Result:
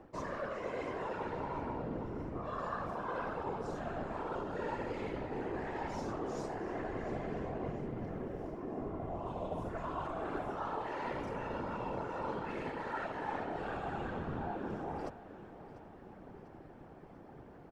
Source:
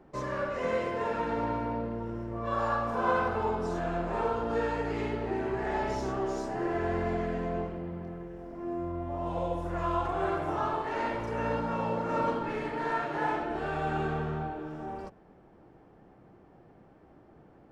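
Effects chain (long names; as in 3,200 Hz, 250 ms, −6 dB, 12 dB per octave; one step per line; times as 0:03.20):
reversed playback
downward compressor 6 to 1, threshold −40 dBFS, peak gain reduction 16.5 dB
reversed playback
random phases in short frames
repeating echo 695 ms, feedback 52%, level −16 dB
level +3 dB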